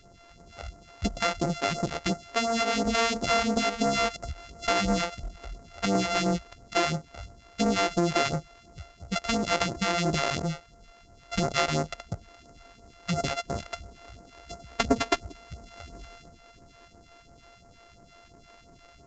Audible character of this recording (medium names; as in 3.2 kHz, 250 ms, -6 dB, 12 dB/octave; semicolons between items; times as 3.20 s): a buzz of ramps at a fixed pitch in blocks of 64 samples; phasing stages 2, 2.9 Hz, lowest notch 110–3100 Hz; µ-law